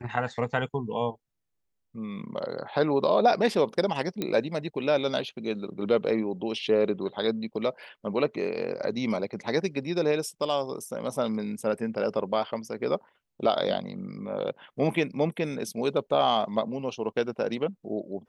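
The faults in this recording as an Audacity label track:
4.220000	4.220000	pop -15 dBFS

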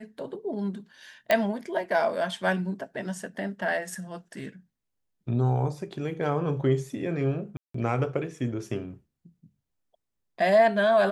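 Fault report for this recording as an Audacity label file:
1.310000	1.310000	pop -10 dBFS
7.570000	7.740000	dropout 174 ms

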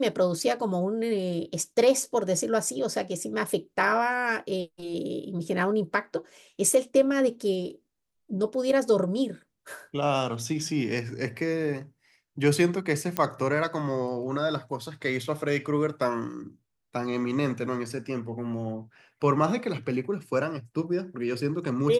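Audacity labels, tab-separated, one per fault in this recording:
13.170000	13.170000	pop -11 dBFS

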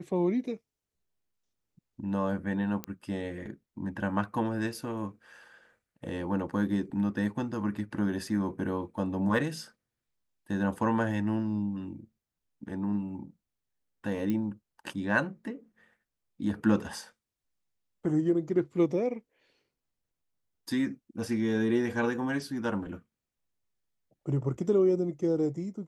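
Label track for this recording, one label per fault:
2.840000	2.840000	pop -19 dBFS
14.300000	14.300000	pop -20 dBFS

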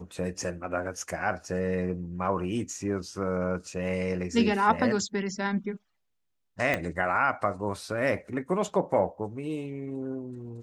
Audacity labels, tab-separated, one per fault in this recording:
6.740000	6.740000	pop -13 dBFS

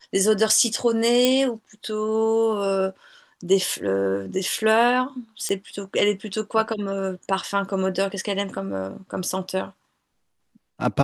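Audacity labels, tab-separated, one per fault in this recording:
1.250000	1.250000	pop -5 dBFS
5.490000	5.490000	pop -14 dBFS

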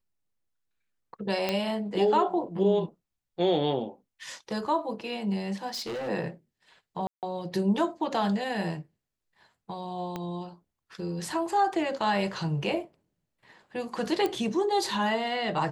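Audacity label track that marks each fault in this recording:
1.490000	1.490000	pop -13 dBFS
5.670000	6.090000	clipped -31 dBFS
7.070000	7.230000	dropout 158 ms
10.160000	10.160000	pop -20 dBFS
14.260000	14.260000	pop -16 dBFS

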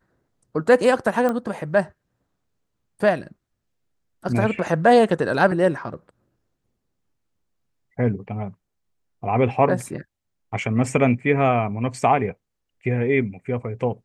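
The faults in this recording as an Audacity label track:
1.290000	1.290000	pop -13 dBFS

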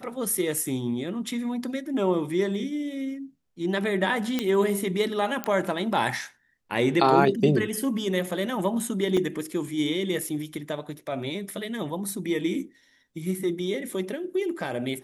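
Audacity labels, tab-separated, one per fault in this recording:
4.390000	4.390000	pop -11 dBFS
5.440000	5.440000	pop -12 dBFS
9.170000	9.170000	dropout 4 ms

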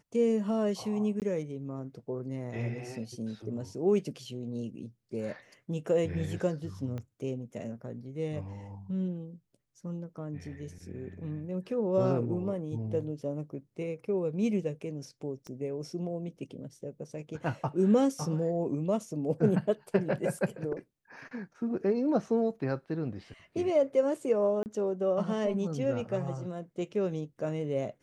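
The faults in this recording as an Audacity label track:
1.200000	1.220000	dropout 18 ms
6.980000	6.980000	pop -27 dBFS
15.470000	15.470000	pop -31 dBFS
24.630000	24.660000	dropout 29 ms

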